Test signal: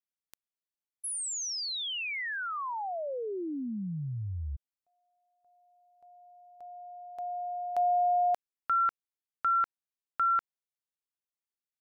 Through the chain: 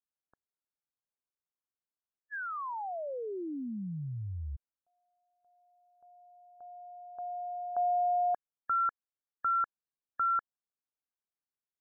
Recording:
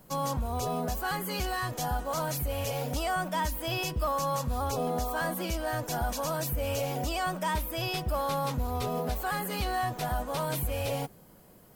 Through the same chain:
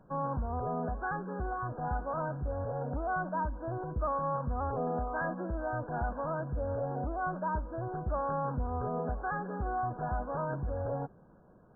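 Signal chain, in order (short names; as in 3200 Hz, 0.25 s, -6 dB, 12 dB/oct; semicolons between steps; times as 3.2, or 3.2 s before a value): brick-wall FIR low-pass 1700 Hz; gain -2.5 dB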